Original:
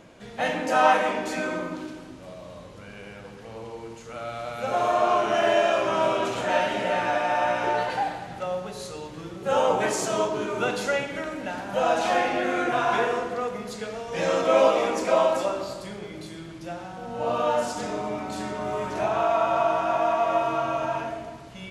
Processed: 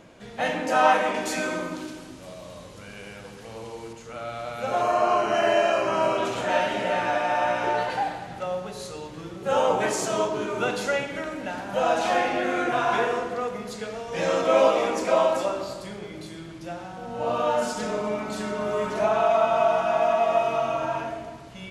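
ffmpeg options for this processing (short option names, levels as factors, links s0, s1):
-filter_complex "[0:a]asettb=1/sr,asplit=3[s0][s1][s2];[s0]atrim=end=1.144[s3];[s1]atrim=start=1.14:end=3.93,asetpts=PTS-STARTPTS,afade=t=in:d=0.004:c=qsin,afade=t=out:st=2.786:d=0.004:c=qsin,highshelf=f=4000:g=9.5[s4];[s2]atrim=start=3.926[s5];[s3][s4]acrossfade=d=0.004:c1=hsin:c2=qsin[s6];[s6][s5]acrossfade=d=0.004:c1=qsin:c2=hsin,asettb=1/sr,asplit=3[s7][s8][s9];[s7]atrim=end=4.824[s10];[s8]atrim=start=4.82:end=6.18,asetpts=PTS-STARTPTS,afade=t=in:d=0.004:c=qsin,afade=t=out:st=1.356:d=0.004:c=qsin,asuperstop=centerf=3500:order=8:qfactor=5.6[s11];[s9]atrim=start=6.176[s12];[s10][s11]acrossfade=d=0.004:c1=hsin:c2=qsin[s13];[s13][s12]acrossfade=d=0.004:c1=qsin:c2=hsin,asettb=1/sr,asplit=3[s14][s15][s16];[s14]atrim=end=17.614[s17];[s15]atrim=start=17.61:end=20.74,asetpts=PTS-STARTPTS,afade=t=in:d=0.004:c=qsin,afade=t=out:st=3.126:d=0.004:c=qsin,aecho=1:1:4.7:0.65,atrim=end_sample=138033[s18];[s16]atrim=start=20.736[s19];[s17][s18]acrossfade=d=0.004:c1=hsin:c2=qsin[s20];[s20][s19]acrossfade=d=0.004:c1=qsin:c2=hsin"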